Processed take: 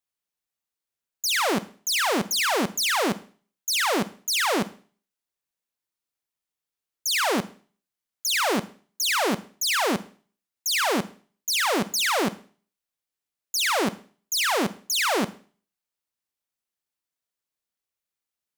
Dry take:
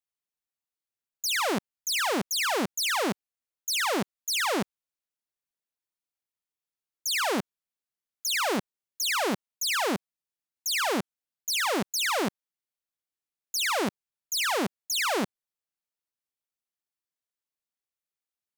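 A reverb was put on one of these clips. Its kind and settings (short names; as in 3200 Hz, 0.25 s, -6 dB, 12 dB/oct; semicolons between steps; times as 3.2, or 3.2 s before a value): Schroeder reverb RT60 0.43 s, combs from 33 ms, DRR 14.5 dB; gain +3.5 dB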